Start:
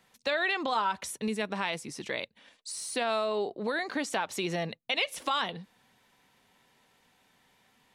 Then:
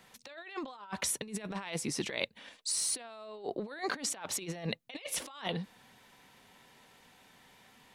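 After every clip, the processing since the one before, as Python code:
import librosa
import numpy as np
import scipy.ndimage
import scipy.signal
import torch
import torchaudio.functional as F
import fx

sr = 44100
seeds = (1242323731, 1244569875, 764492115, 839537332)

y = fx.over_compress(x, sr, threshold_db=-37.0, ratio=-0.5)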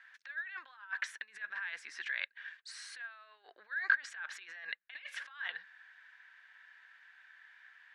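y = fx.ladder_bandpass(x, sr, hz=1700.0, resonance_pct=85)
y = y * librosa.db_to_amplitude(8.0)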